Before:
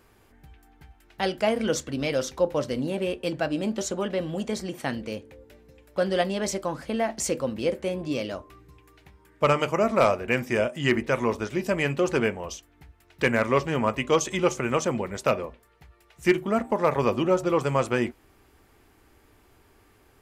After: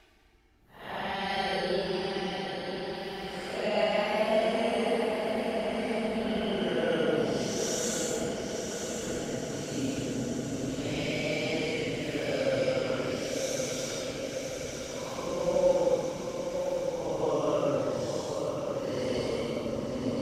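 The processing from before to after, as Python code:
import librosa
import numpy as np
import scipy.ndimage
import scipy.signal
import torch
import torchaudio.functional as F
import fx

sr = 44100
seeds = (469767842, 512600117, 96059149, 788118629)

y = fx.paulstretch(x, sr, seeds[0], factor=12.0, window_s=0.05, from_s=1.12)
y = fx.echo_diffused(y, sr, ms=1009, feedback_pct=71, wet_db=-6)
y = fx.hpss(y, sr, part='harmonic', gain_db=-5)
y = y * 10.0 ** (-2.5 / 20.0)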